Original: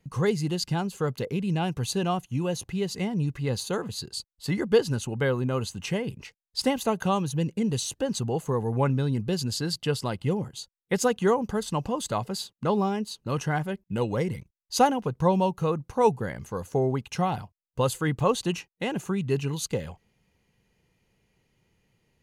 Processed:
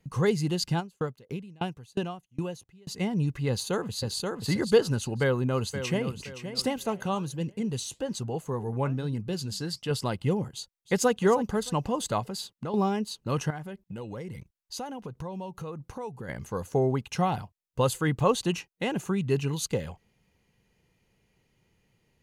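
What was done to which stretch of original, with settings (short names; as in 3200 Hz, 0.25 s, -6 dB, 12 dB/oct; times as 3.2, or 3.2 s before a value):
0.79–2.99 dB-ramp tremolo decaying 4 Hz -> 1.8 Hz, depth 31 dB
3.49–4.17 echo throw 0.53 s, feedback 25%, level -3.5 dB
5.21–6.07 echo throw 0.52 s, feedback 35%, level -10 dB
6.66–9.91 flange 1.2 Hz, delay 1.2 ms, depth 6.8 ms, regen -83%
10.54–11.11 echo throw 0.31 s, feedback 35%, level -15.5 dB
12.2–12.74 compressor 4:1, threshold -31 dBFS
13.5–16.29 compressor 4:1, threshold -36 dBFS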